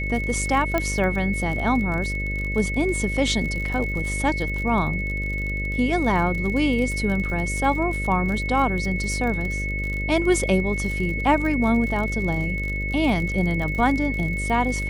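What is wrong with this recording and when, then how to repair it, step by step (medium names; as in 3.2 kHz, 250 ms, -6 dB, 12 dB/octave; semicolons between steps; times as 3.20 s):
buzz 50 Hz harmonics 12 -28 dBFS
crackle 43 per s -28 dBFS
whine 2.2 kHz -28 dBFS
0.78 s: pop -9 dBFS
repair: de-click; band-stop 2.2 kHz, Q 30; de-hum 50 Hz, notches 12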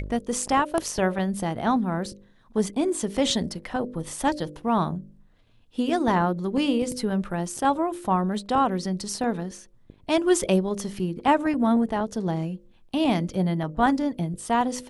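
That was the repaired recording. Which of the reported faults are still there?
0.78 s: pop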